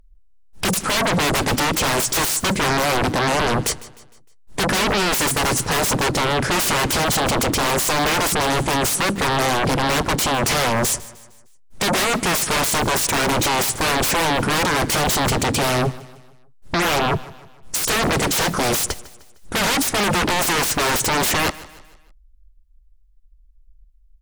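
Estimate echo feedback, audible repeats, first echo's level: 45%, 3, −19.0 dB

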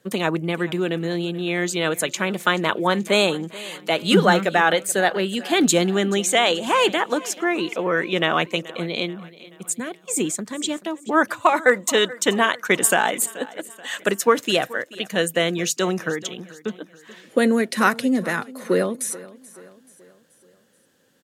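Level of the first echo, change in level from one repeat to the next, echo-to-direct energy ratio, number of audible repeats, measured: −19.5 dB, −6.0 dB, −18.5 dB, 3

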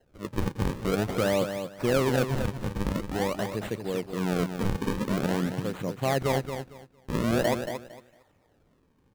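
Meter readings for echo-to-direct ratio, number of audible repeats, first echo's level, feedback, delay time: −8.0 dB, 3, −8.0 dB, 22%, 228 ms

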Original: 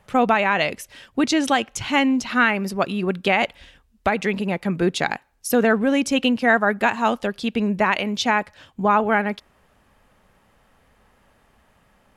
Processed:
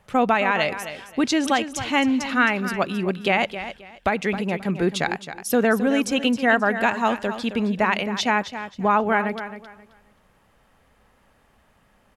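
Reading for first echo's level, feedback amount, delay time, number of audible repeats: −11.5 dB, 24%, 266 ms, 2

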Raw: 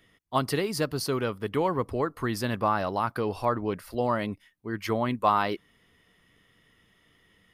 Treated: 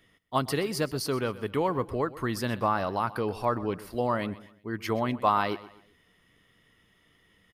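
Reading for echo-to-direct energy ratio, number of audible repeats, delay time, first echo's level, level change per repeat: −17.0 dB, 3, 126 ms, −17.5 dB, −8.5 dB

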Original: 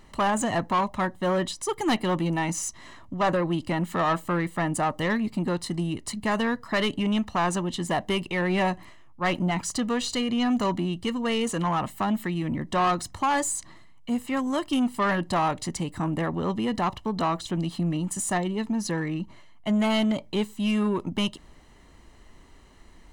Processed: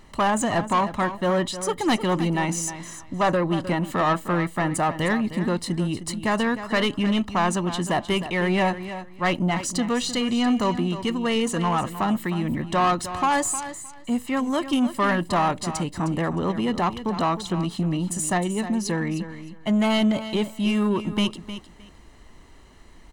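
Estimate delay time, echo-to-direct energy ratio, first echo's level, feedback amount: 309 ms, −12.0 dB, −12.0 dB, 19%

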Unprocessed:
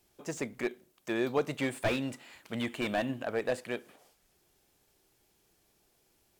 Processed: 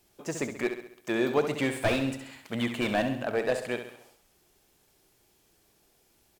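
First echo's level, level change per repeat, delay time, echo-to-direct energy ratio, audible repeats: −8.5 dB, −6.0 dB, 67 ms, −7.0 dB, 5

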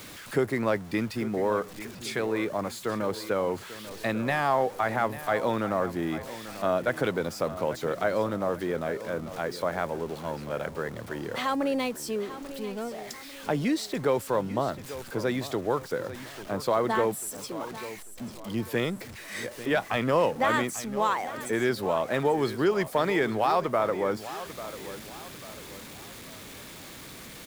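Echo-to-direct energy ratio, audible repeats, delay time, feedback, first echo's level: −13.0 dB, 3, 843 ms, 40%, −14.0 dB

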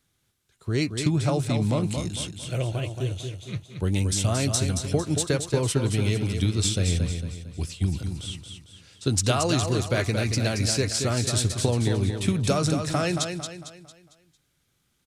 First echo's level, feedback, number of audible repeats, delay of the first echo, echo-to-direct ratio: −6.5 dB, 41%, 4, 226 ms, −5.5 dB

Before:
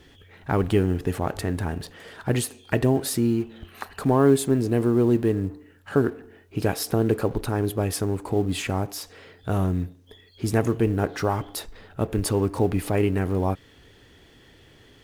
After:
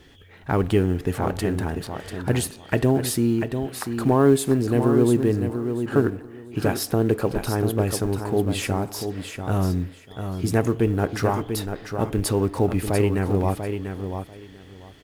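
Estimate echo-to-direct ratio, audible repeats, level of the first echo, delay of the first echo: −7.5 dB, 2, −7.5 dB, 692 ms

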